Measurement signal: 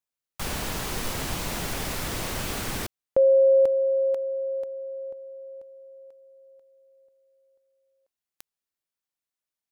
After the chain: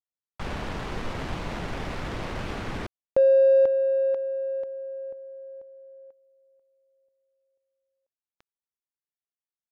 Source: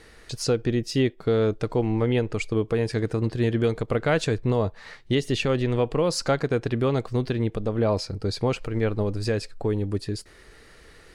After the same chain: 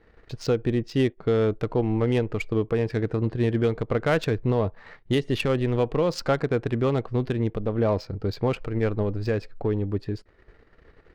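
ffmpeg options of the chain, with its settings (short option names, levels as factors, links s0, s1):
-af "adynamicsmooth=sensitivity=2.5:basefreq=2000,agate=range=0.355:threshold=0.00316:ratio=3:release=25:detection=rms"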